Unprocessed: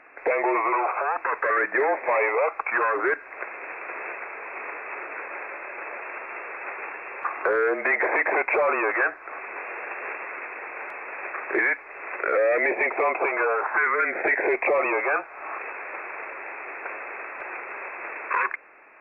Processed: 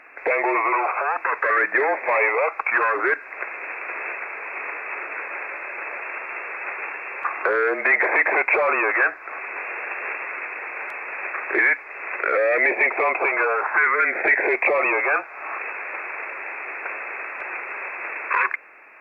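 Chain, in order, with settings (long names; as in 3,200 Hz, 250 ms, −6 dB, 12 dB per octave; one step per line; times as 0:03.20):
high-shelf EQ 2,100 Hz +11 dB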